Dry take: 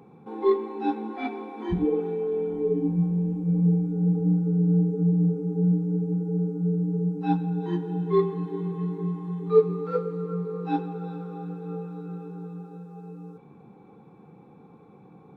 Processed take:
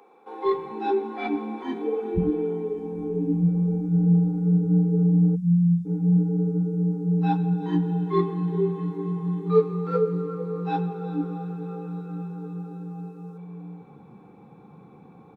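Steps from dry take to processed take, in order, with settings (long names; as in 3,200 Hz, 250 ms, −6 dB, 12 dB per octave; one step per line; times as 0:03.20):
multiband delay without the direct sound highs, lows 450 ms, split 390 Hz
time-frequency box erased 0:05.36–0:05.86, 220–3,400 Hz
level +3 dB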